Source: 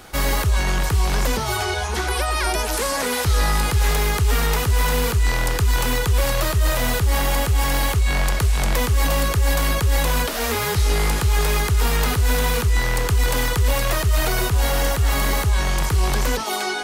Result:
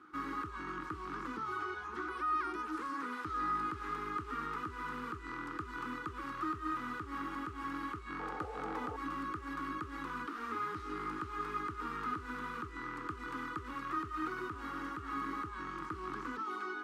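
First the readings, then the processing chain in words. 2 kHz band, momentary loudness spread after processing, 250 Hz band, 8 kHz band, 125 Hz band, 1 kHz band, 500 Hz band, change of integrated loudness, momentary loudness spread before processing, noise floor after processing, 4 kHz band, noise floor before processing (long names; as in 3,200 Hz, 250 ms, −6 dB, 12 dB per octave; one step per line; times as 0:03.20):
−17.5 dB, 5 LU, −12.5 dB, below −35 dB, −31.0 dB, −11.5 dB, −22.0 dB, −19.0 dB, 2 LU, −47 dBFS, −29.5 dB, −24 dBFS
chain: sound drawn into the spectrogram noise, 0:08.19–0:08.97, 420–900 Hz −18 dBFS
pair of resonant band-passes 620 Hz, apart 2 octaves
level −4.5 dB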